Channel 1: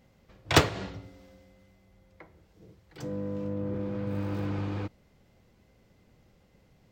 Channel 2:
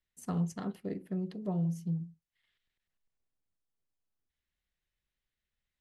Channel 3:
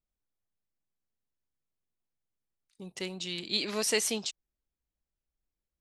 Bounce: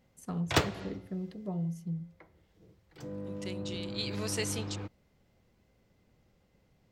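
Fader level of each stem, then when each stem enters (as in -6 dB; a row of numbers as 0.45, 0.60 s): -6.0, -2.5, -6.5 dB; 0.00, 0.00, 0.45 s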